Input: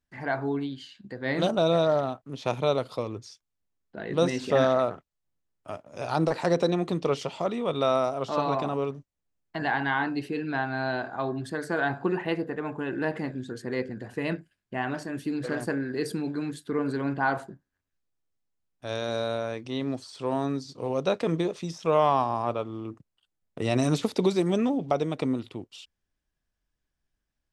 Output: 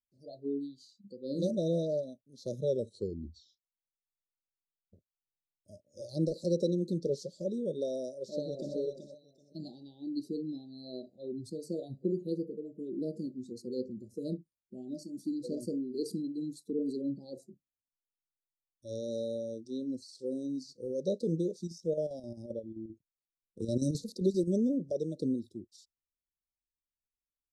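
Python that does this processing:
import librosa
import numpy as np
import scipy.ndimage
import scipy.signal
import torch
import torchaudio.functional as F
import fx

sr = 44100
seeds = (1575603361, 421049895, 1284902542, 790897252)

y = fx.echo_throw(x, sr, start_s=8.21, length_s=0.55, ms=380, feedback_pct=40, wet_db=-4.5)
y = fx.chopper(y, sr, hz=7.6, depth_pct=65, duty_pct=70, at=(21.63, 24.55), fade=0.02)
y = fx.edit(y, sr, fx.tape_stop(start_s=2.6, length_s=2.33), tone=tone)
y = scipy.signal.sosfilt(scipy.signal.cheby1(5, 1.0, [590.0, 4100.0], 'bandstop', fs=sr, output='sos'), y)
y = fx.noise_reduce_blind(y, sr, reduce_db=15)
y = fx.dynamic_eq(y, sr, hz=210.0, q=1.4, threshold_db=-42.0, ratio=4.0, max_db=4)
y = y * 10.0 ** (-5.5 / 20.0)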